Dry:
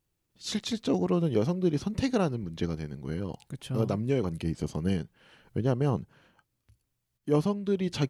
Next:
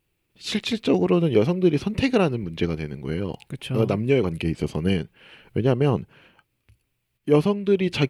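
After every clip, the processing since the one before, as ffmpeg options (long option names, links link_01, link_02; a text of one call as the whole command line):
ffmpeg -i in.wav -af "equalizer=frequency=400:width_type=o:width=0.67:gain=4,equalizer=frequency=2500:width_type=o:width=0.67:gain=10,equalizer=frequency=6300:width_type=o:width=0.67:gain=-6,volume=5dB" out.wav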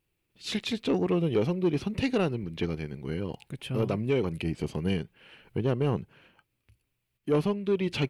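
ffmpeg -i in.wav -af "asoftclip=type=tanh:threshold=-12dB,volume=-5dB" out.wav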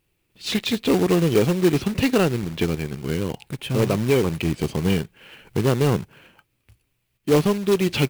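ffmpeg -i in.wav -af "acrusher=bits=3:mode=log:mix=0:aa=0.000001,volume=7.5dB" out.wav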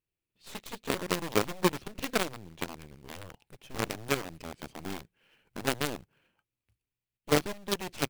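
ffmpeg -i in.wav -af "aeval=exprs='0.376*(cos(1*acos(clip(val(0)/0.376,-1,1)))-cos(1*PI/2))+0.15*(cos(3*acos(clip(val(0)/0.376,-1,1)))-cos(3*PI/2))+0.0133*(cos(8*acos(clip(val(0)/0.376,-1,1)))-cos(8*PI/2))':channel_layout=same,volume=-6.5dB" out.wav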